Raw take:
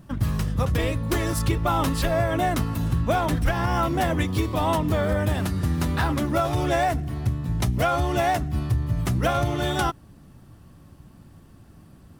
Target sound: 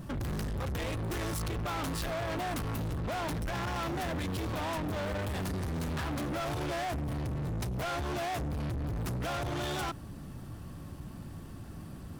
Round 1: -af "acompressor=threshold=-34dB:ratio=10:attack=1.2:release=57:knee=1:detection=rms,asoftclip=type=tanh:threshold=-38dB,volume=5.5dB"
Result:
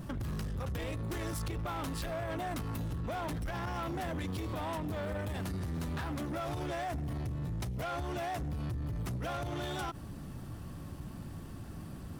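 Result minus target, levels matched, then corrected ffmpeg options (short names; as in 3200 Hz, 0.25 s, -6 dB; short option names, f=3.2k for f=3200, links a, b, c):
compressor: peak gain reduction +9.5 dB
-af "acompressor=threshold=-23.5dB:ratio=10:attack=1.2:release=57:knee=1:detection=rms,asoftclip=type=tanh:threshold=-38dB,volume=5.5dB"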